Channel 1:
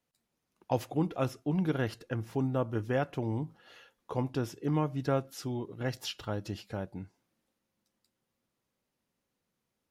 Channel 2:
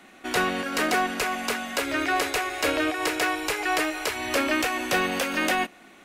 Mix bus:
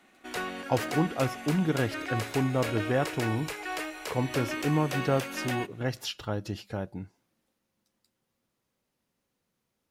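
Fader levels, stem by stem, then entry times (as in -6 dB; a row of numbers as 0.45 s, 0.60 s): +3.0 dB, -10.0 dB; 0.00 s, 0.00 s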